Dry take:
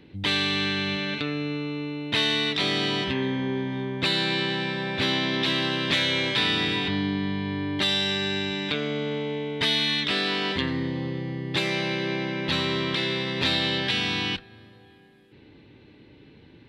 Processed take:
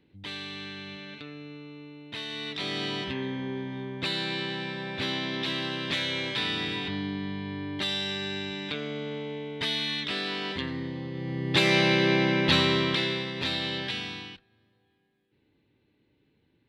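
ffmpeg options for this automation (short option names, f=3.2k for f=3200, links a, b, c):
-af "volume=5dB,afade=t=in:st=2.27:d=0.55:silence=0.421697,afade=t=in:st=11.11:d=0.65:silence=0.281838,afade=t=out:st=12.34:d=0.98:silence=0.281838,afade=t=out:st=13.82:d=0.54:silence=0.251189"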